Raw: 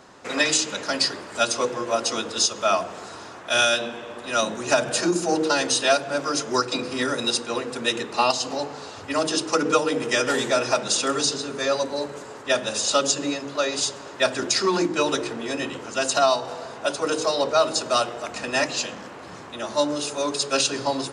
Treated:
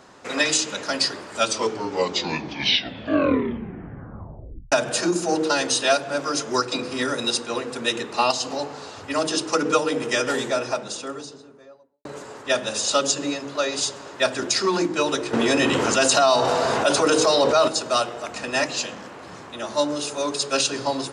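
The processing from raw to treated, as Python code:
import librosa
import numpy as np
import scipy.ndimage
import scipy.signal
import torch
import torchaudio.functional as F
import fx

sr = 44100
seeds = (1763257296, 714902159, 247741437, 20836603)

y = fx.studio_fade_out(x, sr, start_s=9.98, length_s=2.07)
y = fx.env_flatten(y, sr, amount_pct=70, at=(15.33, 17.68))
y = fx.edit(y, sr, fx.tape_stop(start_s=1.33, length_s=3.39), tone=tone)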